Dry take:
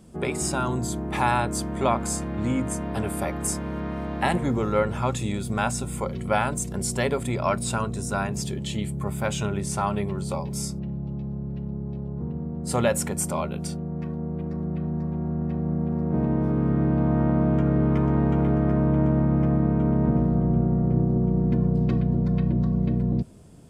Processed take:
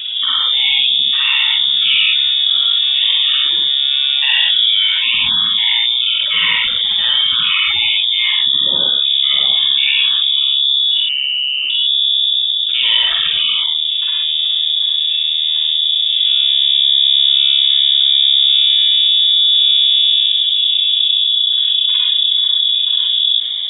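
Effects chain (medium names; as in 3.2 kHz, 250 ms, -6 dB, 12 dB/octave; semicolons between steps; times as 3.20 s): tracing distortion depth 0.22 ms; bit crusher 9-bit; rotary cabinet horn 0.9 Hz; loudest bins only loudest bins 64; 10.91–11.70 s: frequency shift +470 Hz; reverberation, pre-delay 44 ms, DRR -9.5 dB; frequency inversion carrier 3.6 kHz; level flattener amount 70%; trim -3 dB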